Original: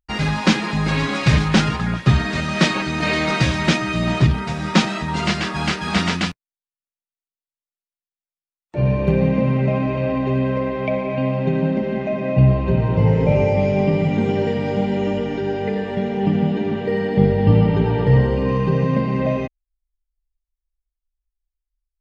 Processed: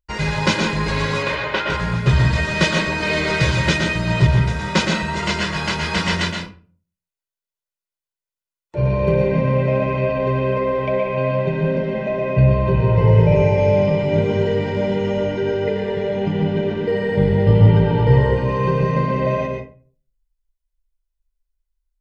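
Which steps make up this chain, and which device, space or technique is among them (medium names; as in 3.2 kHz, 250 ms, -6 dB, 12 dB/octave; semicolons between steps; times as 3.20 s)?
1.23–1.70 s: three-band isolator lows -23 dB, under 330 Hz, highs -23 dB, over 3.8 kHz; microphone above a desk (comb 2 ms, depth 60%; reverberation RT60 0.40 s, pre-delay 112 ms, DRR 3 dB); trim -1.5 dB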